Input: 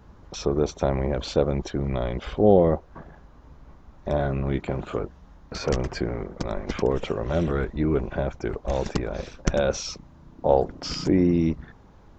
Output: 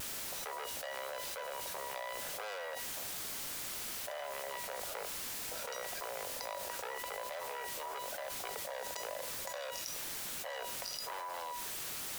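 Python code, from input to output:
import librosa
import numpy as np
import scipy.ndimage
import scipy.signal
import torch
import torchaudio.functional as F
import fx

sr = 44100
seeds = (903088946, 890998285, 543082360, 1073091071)

y = fx.wiener(x, sr, points=41)
y = fx.tube_stage(y, sr, drive_db=25.0, bias=0.75)
y = scipy.signal.sosfilt(scipy.signal.butter(8, 510.0, 'highpass', fs=sr, output='sos'), y)
y = fx.tilt_eq(y, sr, slope=2.0)
y = fx.comb_fb(y, sr, f0_hz=980.0, decay_s=0.33, harmonics='all', damping=0.0, mix_pct=90)
y = fx.dmg_noise_colour(y, sr, seeds[0], colour='white', level_db=-69.0)
y = fx.vibrato(y, sr, rate_hz=1.0, depth_cents=28.0)
y = fx.env_flatten(y, sr, amount_pct=100)
y = y * librosa.db_to_amplitude(6.0)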